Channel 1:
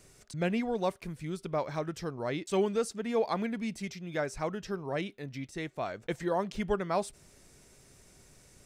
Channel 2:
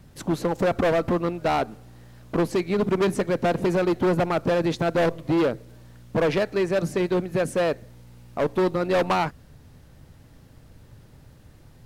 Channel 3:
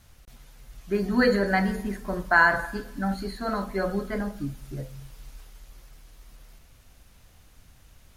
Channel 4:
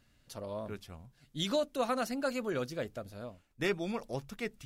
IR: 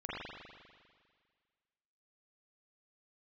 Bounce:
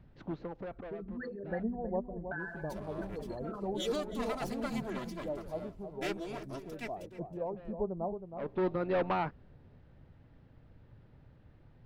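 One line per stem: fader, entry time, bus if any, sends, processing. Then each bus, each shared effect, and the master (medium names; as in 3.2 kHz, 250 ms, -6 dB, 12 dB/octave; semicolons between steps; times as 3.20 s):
-2.5 dB, 1.10 s, no send, echo send -8.5 dB, steep low-pass 870 Hz 36 dB/octave; flange 0.65 Hz, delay 0.4 ms, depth 5.6 ms, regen +35%
-8.5 dB, 0.00 s, no send, no echo send, Gaussian low-pass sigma 2.6 samples; band-stop 1.1 kHz, Q 26; auto duck -22 dB, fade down 1.25 s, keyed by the third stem
-12.5 dB, 0.00 s, no send, echo send -23.5 dB, resonances exaggerated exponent 3; compression, threshold -27 dBFS, peak gain reduction 12.5 dB
-5.0 dB, 2.40 s, no send, echo send -17 dB, comb filter that takes the minimum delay 3 ms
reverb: none
echo: feedback delay 318 ms, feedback 18%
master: none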